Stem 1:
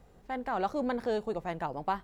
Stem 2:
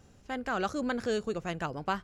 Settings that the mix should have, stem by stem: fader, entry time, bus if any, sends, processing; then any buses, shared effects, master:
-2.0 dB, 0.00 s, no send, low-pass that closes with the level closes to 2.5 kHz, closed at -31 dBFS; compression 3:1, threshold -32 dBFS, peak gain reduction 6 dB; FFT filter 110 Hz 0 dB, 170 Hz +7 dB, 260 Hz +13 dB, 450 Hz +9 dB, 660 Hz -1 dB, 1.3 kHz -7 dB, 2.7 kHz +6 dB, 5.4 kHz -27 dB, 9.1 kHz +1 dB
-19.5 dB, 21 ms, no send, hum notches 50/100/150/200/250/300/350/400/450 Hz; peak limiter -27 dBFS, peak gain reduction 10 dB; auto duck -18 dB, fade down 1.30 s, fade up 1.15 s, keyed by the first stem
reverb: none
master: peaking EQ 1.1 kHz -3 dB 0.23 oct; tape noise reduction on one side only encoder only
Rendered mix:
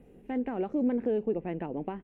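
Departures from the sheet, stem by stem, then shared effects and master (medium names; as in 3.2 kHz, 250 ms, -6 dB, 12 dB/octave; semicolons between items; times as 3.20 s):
stem 2: polarity flipped; master: missing tape noise reduction on one side only encoder only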